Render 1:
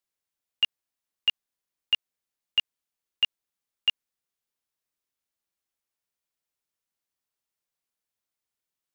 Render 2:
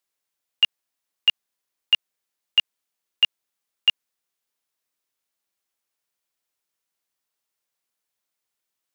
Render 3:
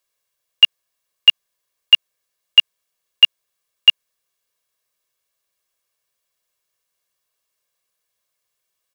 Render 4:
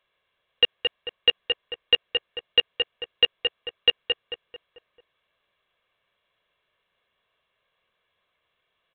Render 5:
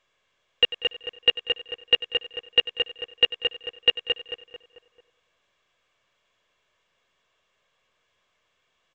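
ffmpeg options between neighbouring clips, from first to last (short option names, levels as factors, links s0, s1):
-af "lowshelf=f=190:g=-9,volume=1.88"
-af "aecho=1:1:1.8:0.6,volume=1.68"
-filter_complex "[0:a]aresample=8000,asoftclip=type=tanh:threshold=0.178,aresample=44100,asplit=2[s0][s1];[s1]adelay=221,lowpass=f=2400:p=1,volume=0.335,asplit=2[s2][s3];[s3]adelay=221,lowpass=f=2400:p=1,volume=0.49,asplit=2[s4][s5];[s5]adelay=221,lowpass=f=2400:p=1,volume=0.49,asplit=2[s6][s7];[s7]adelay=221,lowpass=f=2400:p=1,volume=0.49,asplit=2[s8][s9];[s9]adelay=221,lowpass=f=2400:p=1,volume=0.49[s10];[s0][s2][s4][s6][s8][s10]amix=inputs=6:normalize=0,alimiter=level_in=6.31:limit=0.891:release=50:level=0:latency=1,volume=0.422"
-af "aecho=1:1:95|190|285|380:0.158|0.0792|0.0396|0.0198" -ar 16000 -c:a pcm_mulaw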